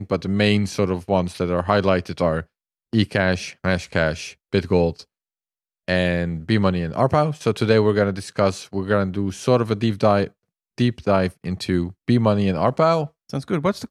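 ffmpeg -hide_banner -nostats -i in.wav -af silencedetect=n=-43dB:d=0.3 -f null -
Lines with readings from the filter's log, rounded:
silence_start: 2.44
silence_end: 2.93 | silence_duration: 0.49
silence_start: 5.03
silence_end: 5.88 | silence_duration: 0.85
silence_start: 10.30
silence_end: 10.78 | silence_duration: 0.48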